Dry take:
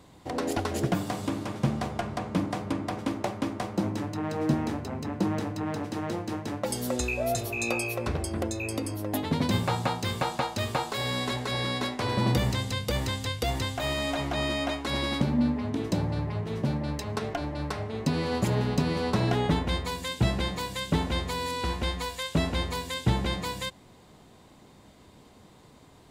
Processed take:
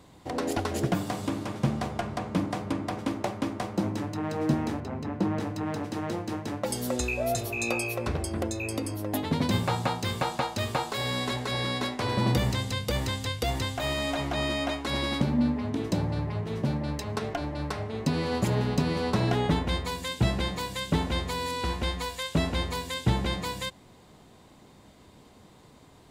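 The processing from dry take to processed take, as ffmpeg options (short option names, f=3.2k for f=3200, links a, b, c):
-filter_complex "[0:a]asettb=1/sr,asplit=3[a][b][c];[a]atrim=end=4.804[d];[b]atrim=start=4.8:end=5.4,asetpts=PTS-STARTPTS,afade=t=in:d=0.004:c=qsin,afade=t=out:st=0.596:d=0.004:c=qsin,highshelf=f=5.1k:g=-11[e];[c]atrim=start=5.396[f];[d][e]acrossfade=d=0.004:c1=hsin:c2=qsin[g];[g][f]acrossfade=d=0.004:c1=qsin:c2=hsin"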